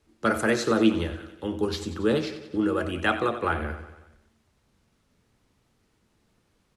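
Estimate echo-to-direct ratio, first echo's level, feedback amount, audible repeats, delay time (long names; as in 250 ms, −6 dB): −11.0 dB, −13.0 dB, 59%, 5, 92 ms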